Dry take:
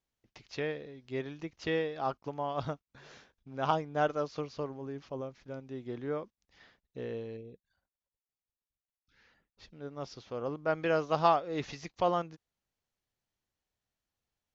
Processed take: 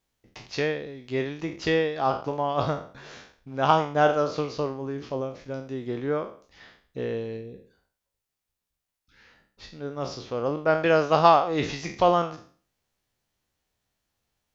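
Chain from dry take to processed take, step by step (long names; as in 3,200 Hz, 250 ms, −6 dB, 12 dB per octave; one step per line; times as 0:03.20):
peak hold with a decay on every bin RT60 0.44 s
level +8 dB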